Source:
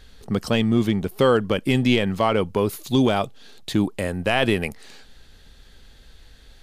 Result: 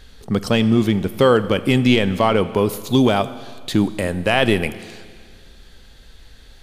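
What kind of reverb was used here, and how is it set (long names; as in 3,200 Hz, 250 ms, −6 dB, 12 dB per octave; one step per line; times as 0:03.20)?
four-comb reverb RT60 1.9 s, combs from 28 ms, DRR 14 dB
level +3.5 dB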